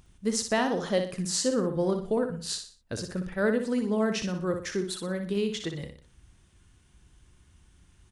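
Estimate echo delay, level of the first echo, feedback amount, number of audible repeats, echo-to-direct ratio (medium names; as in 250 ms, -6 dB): 60 ms, -7.0 dB, 37%, 4, -6.5 dB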